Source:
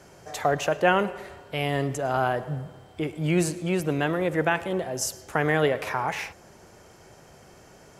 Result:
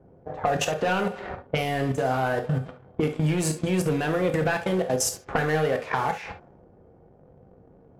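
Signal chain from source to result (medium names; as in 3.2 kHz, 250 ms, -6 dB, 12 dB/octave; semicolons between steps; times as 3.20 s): waveshaping leveller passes 3; level held to a coarse grid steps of 20 dB; level-controlled noise filter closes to 470 Hz, open at -19 dBFS; compression 6:1, threshold -33 dBFS, peak gain reduction 15.5 dB; reverberation, pre-delay 3 ms, DRR 4.5 dB; trim +8.5 dB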